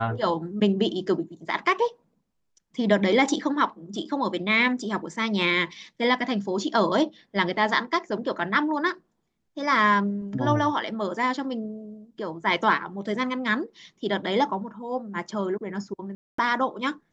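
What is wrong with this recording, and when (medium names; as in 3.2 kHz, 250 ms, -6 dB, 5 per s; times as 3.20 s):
16.15–16.38 s: dropout 234 ms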